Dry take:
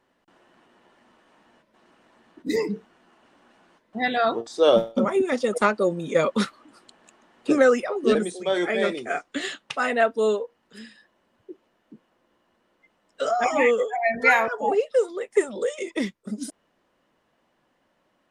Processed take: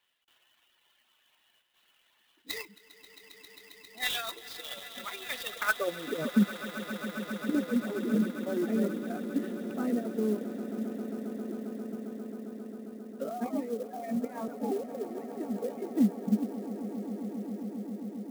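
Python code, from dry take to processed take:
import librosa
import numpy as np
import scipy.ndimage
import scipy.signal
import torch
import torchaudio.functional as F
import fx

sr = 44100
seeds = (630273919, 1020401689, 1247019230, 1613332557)

y = fx.dereverb_blind(x, sr, rt60_s=1.8)
y = fx.over_compress(y, sr, threshold_db=-22.0, ratio=-0.5)
y = fx.filter_sweep_bandpass(y, sr, from_hz=3300.0, to_hz=220.0, start_s=5.47, end_s=6.24, q=3.3)
y = fx.echo_swell(y, sr, ms=134, loudest=8, wet_db=-16.0)
y = fx.clock_jitter(y, sr, seeds[0], jitter_ms=0.026)
y = y * librosa.db_to_amplitude(4.5)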